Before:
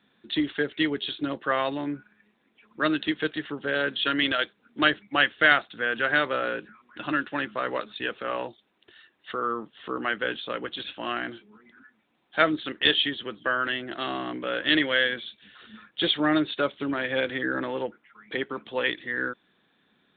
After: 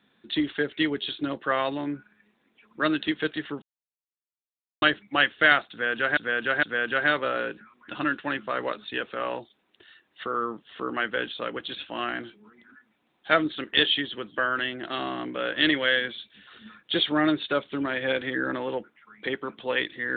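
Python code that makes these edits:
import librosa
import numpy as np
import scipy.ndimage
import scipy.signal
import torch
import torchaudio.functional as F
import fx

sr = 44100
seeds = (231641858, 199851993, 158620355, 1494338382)

y = fx.edit(x, sr, fx.silence(start_s=3.62, length_s=1.2),
    fx.repeat(start_s=5.71, length_s=0.46, count=3), tone=tone)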